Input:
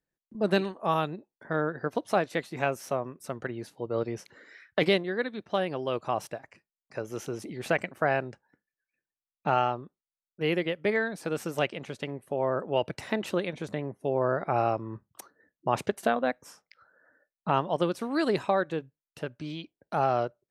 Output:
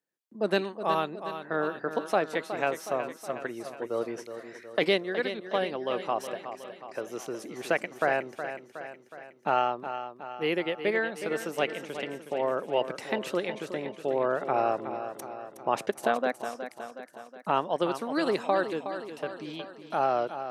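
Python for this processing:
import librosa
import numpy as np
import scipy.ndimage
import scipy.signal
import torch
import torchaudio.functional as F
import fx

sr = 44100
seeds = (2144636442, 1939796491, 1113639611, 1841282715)

y = scipy.signal.sosfilt(scipy.signal.butter(2, 250.0, 'highpass', fs=sr, output='sos'), x)
y = fx.echo_feedback(y, sr, ms=367, feedback_pct=56, wet_db=-10.0)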